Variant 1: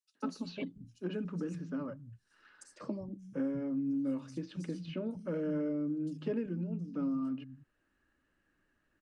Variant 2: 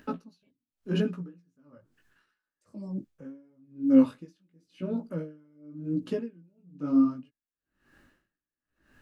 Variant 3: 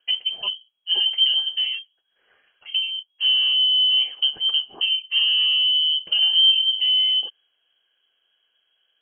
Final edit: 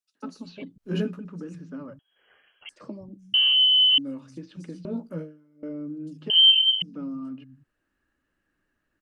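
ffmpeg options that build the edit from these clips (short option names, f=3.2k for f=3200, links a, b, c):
-filter_complex "[1:a]asplit=2[a][b];[2:a]asplit=3[c][d][e];[0:a]asplit=6[f][g][h][i][j][k];[f]atrim=end=0.782[l];[a]atrim=start=0.778:end=1.192[m];[g]atrim=start=1.188:end=1.992[n];[c]atrim=start=1.988:end=2.692[o];[h]atrim=start=2.688:end=3.342[p];[d]atrim=start=3.338:end=3.982[q];[i]atrim=start=3.978:end=4.852[r];[b]atrim=start=4.848:end=5.632[s];[j]atrim=start=5.628:end=6.302[t];[e]atrim=start=6.298:end=6.822[u];[k]atrim=start=6.818[v];[l][m]acrossfade=d=0.004:c1=hsin:c2=hsin[w];[w][n]acrossfade=d=0.004:c1=hsin:c2=hsin[x];[x][o]acrossfade=d=0.004:c1=hsin:c2=hsin[y];[y][p]acrossfade=d=0.004:c1=hsin:c2=hsin[z];[z][q]acrossfade=d=0.004:c1=hsin:c2=hsin[aa];[aa][r]acrossfade=d=0.004:c1=hsin:c2=hsin[ab];[ab][s]acrossfade=d=0.004:c1=hsin:c2=hsin[ac];[ac][t]acrossfade=d=0.004:c1=hsin:c2=hsin[ad];[ad][u]acrossfade=d=0.004:c1=hsin:c2=hsin[ae];[ae][v]acrossfade=d=0.004:c1=hsin:c2=hsin"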